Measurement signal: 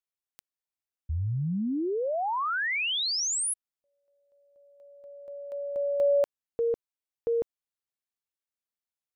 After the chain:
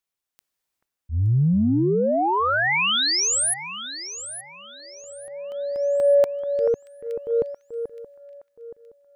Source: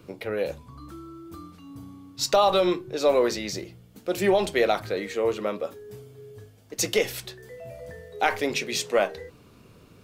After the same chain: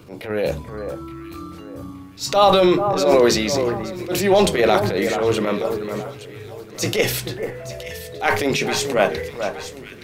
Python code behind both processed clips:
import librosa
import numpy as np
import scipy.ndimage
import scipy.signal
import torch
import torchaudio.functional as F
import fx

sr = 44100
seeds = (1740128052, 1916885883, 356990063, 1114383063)

y = fx.transient(x, sr, attack_db=-11, sustain_db=5)
y = fx.echo_alternate(y, sr, ms=435, hz=1800.0, feedback_pct=56, wet_db=-7.5)
y = fx.dynamic_eq(y, sr, hz=140.0, q=0.89, threshold_db=-41.0, ratio=4.0, max_db=4)
y = y * librosa.db_to_amplitude(7.0)